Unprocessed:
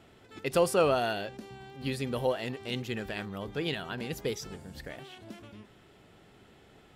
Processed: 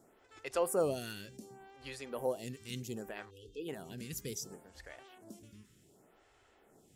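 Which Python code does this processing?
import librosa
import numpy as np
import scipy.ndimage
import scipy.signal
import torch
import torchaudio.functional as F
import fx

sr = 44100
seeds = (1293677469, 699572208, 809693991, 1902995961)

y = fx.high_shelf_res(x, sr, hz=5000.0, db=8.5, q=1.5)
y = fx.spec_erase(y, sr, start_s=3.3, length_s=0.39, low_hz=510.0, high_hz=2500.0)
y = fx.stagger_phaser(y, sr, hz=0.67)
y = y * librosa.db_to_amplitude(-5.0)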